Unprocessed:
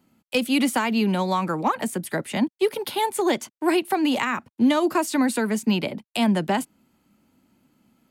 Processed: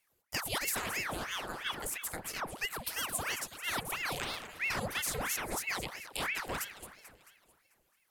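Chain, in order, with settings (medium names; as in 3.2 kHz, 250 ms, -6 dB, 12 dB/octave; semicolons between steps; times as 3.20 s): pre-emphasis filter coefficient 0.8; echo whose repeats swap between lows and highs 110 ms, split 1.6 kHz, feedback 71%, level -8 dB; ring modulator with a swept carrier 1.3 kHz, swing 90%, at 3 Hz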